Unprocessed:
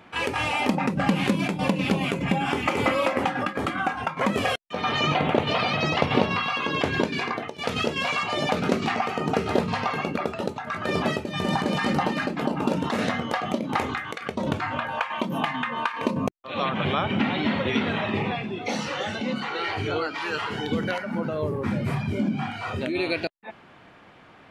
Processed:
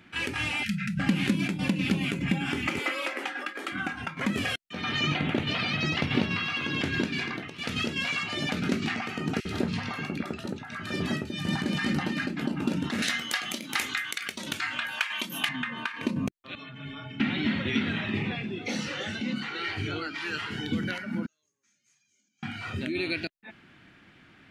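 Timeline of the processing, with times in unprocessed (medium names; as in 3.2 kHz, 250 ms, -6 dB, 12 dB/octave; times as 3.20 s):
0.63–0.99 s: spectral selection erased 220–1300 Hz
2.79–3.72 s: high-pass 370 Hz 24 dB/octave
5.71–6.77 s: echo throw 590 ms, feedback 55%, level -14 dB
9.40–11.47 s: bands offset in time highs, lows 50 ms, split 2 kHz
13.02–15.49 s: tilt EQ +4.5 dB/octave
16.55–17.20 s: inharmonic resonator 130 Hz, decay 0.28 s, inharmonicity 0.03
18.30–19.12 s: peaking EQ 500 Hz +6.5 dB 0.6 oct
21.26–22.43 s: band-pass filter 6.5 kHz, Q 18
whole clip: high-order bell 710 Hz -11 dB; trim -2 dB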